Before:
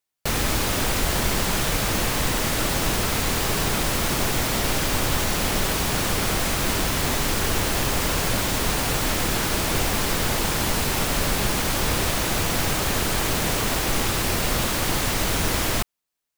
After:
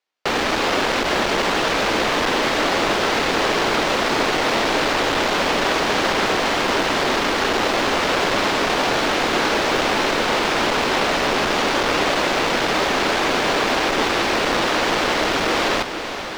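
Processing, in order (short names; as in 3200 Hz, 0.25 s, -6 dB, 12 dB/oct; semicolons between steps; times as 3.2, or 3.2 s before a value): half-waves squared off; three-band isolator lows -21 dB, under 260 Hz, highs -22 dB, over 5600 Hz; diffused feedback echo 0.468 s, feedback 80%, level -12 dB; gain +2.5 dB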